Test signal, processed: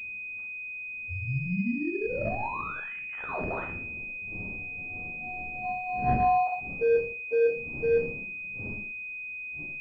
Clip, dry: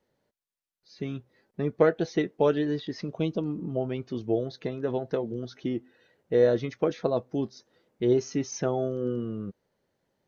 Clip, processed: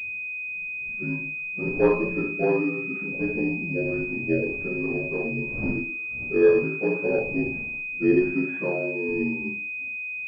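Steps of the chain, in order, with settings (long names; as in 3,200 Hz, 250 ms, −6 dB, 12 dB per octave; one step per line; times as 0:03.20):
partials spread apart or drawn together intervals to 81%
wind on the microphone 230 Hz −46 dBFS
flanger 0.23 Hz, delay 9.4 ms, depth 9.1 ms, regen −14%
background noise pink −69 dBFS
four-comb reverb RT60 0.47 s, combs from 30 ms, DRR 1 dB
noise reduction from a noise print of the clip's start 8 dB
switching amplifier with a slow clock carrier 2,500 Hz
level +4.5 dB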